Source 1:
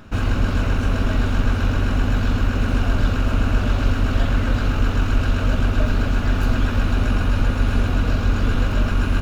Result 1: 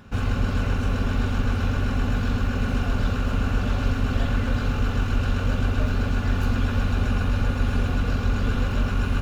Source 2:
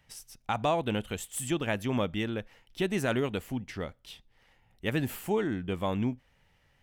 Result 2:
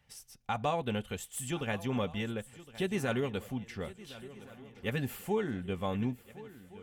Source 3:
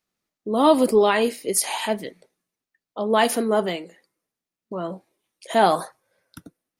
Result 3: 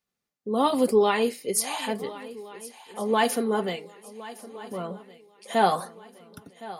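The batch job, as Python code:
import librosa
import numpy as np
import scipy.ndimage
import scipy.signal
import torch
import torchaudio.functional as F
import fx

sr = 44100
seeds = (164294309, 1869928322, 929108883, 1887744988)

y = fx.notch_comb(x, sr, f0_hz=320.0)
y = fx.echo_swing(y, sr, ms=1418, ratio=3, feedback_pct=40, wet_db=-17.5)
y = y * librosa.db_to_amplitude(-2.5)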